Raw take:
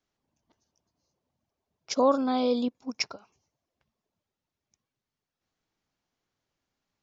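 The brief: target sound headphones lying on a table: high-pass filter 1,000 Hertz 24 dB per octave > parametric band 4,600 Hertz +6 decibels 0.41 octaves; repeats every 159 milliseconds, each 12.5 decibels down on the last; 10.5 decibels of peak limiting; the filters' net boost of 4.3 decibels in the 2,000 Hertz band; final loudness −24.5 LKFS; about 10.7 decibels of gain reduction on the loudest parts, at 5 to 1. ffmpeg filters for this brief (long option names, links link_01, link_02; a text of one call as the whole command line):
ffmpeg -i in.wav -af "equalizer=frequency=2000:width_type=o:gain=5,acompressor=threshold=-29dB:ratio=5,alimiter=level_in=2.5dB:limit=-24dB:level=0:latency=1,volume=-2.5dB,highpass=frequency=1000:width=0.5412,highpass=frequency=1000:width=1.3066,equalizer=frequency=4600:width_type=o:width=0.41:gain=6,aecho=1:1:159|318|477:0.237|0.0569|0.0137,volume=18.5dB" out.wav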